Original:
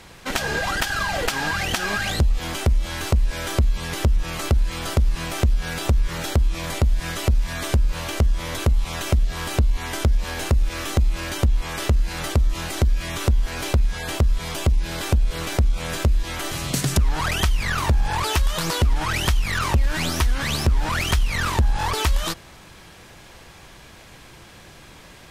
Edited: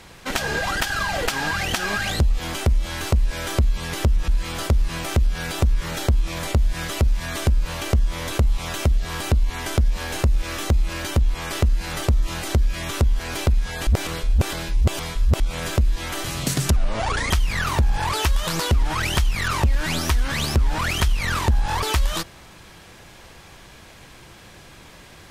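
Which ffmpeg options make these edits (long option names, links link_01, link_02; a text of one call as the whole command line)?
ffmpeg -i in.wav -filter_complex "[0:a]asplit=6[link_01][link_02][link_03][link_04][link_05][link_06];[link_01]atrim=end=4.282[link_07];[link_02]atrim=start=4.548:end=14.142[link_08];[link_03]atrim=start=14.138:end=15.672,asetpts=PTS-STARTPTS,areverse[link_09];[link_04]atrim=start=15.668:end=17.034[link_10];[link_05]atrim=start=17.03:end=17.41,asetpts=PTS-STARTPTS,asetrate=30870,aresample=44100[link_11];[link_06]atrim=start=17.406[link_12];[link_07][link_08]acrossfade=duration=0.004:curve1=hsin:curve2=hsin[link_13];[link_13][link_09]acrossfade=duration=0.004:curve1=hsin:curve2=hsin[link_14];[link_14][link_10]acrossfade=duration=0.004:curve1=hsin:curve2=hsin[link_15];[link_15][link_11]acrossfade=duration=0.004:curve1=hsin:curve2=hsin[link_16];[link_16][link_12]acrossfade=duration=0.004:curve1=hsin:curve2=hsin" out.wav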